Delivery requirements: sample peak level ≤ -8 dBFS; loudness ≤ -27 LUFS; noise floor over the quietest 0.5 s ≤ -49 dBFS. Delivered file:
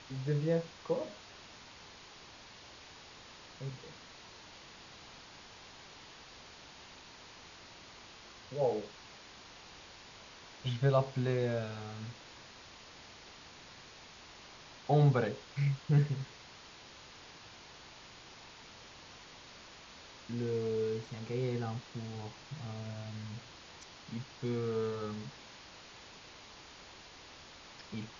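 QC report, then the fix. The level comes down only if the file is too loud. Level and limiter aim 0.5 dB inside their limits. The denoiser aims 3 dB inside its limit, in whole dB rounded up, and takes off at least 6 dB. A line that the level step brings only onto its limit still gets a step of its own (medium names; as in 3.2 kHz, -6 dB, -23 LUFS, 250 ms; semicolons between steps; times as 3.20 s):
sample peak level -16.0 dBFS: pass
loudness -35.5 LUFS: pass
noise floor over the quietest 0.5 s -54 dBFS: pass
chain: none needed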